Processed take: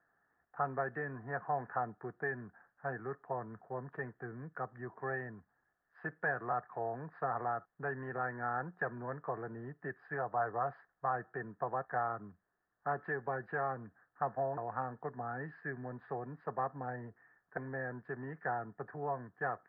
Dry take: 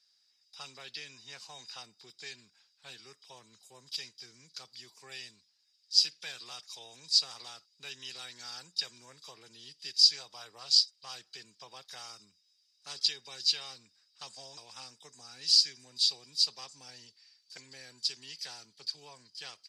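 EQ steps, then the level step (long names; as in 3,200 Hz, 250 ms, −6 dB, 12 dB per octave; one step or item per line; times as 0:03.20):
Chebyshev low-pass with heavy ripple 1,800 Hz, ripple 3 dB
low-shelf EQ 140 Hz +10 dB
parametric band 710 Hz +9.5 dB 0.24 octaves
+15.0 dB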